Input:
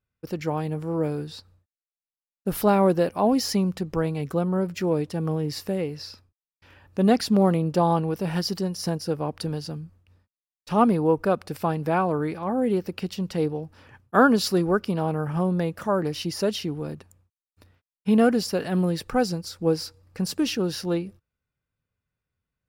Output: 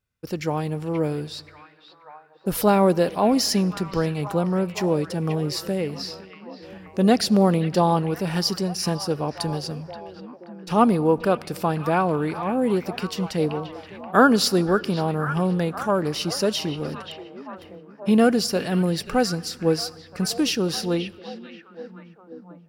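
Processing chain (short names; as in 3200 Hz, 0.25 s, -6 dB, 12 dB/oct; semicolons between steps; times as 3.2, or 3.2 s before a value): bell 6300 Hz +4.5 dB 2.6 oct; delay with a stepping band-pass 0.529 s, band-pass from 2500 Hz, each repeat -0.7 oct, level -7.5 dB; on a send at -22 dB: reverb RT60 2.3 s, pre-delay 40 ms; on the sum: gain +1.5 dB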